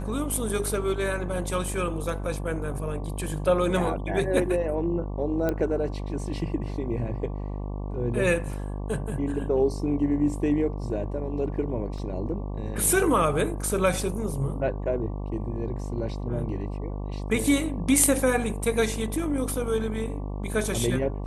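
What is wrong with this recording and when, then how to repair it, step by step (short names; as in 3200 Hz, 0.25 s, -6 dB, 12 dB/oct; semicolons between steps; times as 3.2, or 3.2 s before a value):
buzz 50 Hz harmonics 23 -32 dBFS
5.49 pop -14 dBFS
11.98 gap 3.1 ms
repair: de-click; de-hum 50 Hz, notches 23; interpolate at 11.98, 3.1 ms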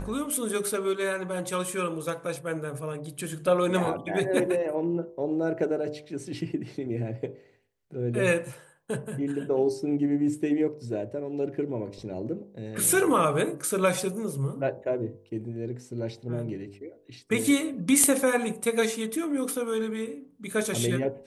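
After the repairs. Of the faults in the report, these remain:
none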